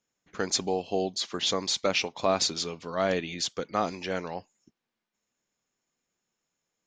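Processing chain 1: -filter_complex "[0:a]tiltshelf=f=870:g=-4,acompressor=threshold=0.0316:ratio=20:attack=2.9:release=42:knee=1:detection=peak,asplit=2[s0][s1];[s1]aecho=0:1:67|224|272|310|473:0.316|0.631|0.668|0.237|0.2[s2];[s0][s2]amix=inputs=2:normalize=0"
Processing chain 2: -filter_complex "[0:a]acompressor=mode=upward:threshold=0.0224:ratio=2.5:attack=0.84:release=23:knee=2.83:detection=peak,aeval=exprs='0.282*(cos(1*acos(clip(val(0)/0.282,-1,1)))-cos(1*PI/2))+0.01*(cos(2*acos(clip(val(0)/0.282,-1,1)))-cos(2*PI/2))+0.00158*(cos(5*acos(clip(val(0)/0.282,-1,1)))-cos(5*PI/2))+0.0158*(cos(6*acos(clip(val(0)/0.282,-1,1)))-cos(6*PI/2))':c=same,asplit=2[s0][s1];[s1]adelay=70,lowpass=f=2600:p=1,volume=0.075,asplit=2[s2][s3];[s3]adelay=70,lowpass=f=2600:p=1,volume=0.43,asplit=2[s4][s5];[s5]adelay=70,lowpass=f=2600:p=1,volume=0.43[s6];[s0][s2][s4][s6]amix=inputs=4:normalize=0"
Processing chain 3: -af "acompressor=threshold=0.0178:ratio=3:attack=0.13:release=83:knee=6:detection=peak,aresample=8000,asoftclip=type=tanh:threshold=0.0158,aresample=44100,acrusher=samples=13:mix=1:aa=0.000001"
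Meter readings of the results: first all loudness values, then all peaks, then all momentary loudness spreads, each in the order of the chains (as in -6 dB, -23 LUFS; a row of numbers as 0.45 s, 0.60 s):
-32.0 LUFS, -29.0 LUFS, -45.0 LUFS; -17.0 dBFS, -12.0 dBFS, -34.0 dBFS; 7 LU, 8 LU, 4 LU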